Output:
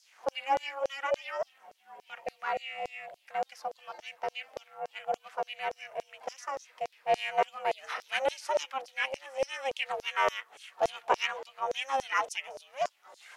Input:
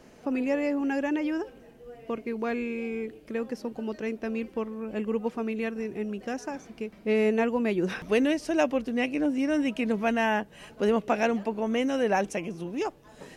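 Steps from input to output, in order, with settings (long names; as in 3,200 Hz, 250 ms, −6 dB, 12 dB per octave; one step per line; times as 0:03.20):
ring modulation 270 Hz
auto-filter high-pass saw down 3.5 Hz 520–5,800 Hz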